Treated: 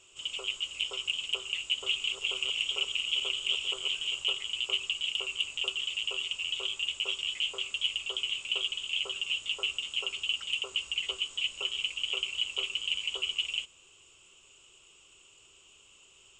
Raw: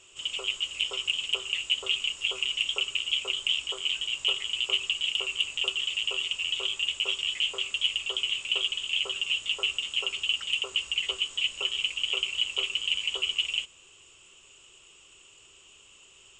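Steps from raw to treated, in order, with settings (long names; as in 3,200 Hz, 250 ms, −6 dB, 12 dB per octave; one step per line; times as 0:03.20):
0:01.61–0:04.24: feedback delay that plays each chunk backwards 199 ms, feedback 42%, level −5 dB
parametric band 1,800 Hz −6 dB 0.24 octaves
level −3.5 dB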